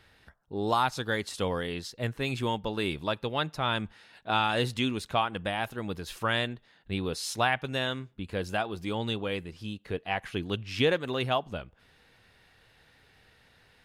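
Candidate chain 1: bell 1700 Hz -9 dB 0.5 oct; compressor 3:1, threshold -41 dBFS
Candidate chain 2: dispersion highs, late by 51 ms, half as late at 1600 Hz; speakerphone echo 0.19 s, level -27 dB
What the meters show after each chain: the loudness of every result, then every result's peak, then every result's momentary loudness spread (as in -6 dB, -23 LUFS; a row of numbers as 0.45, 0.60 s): -42.5, -31.0 LUFS; -25.0, -12.5 dBFS; 22, 10 LU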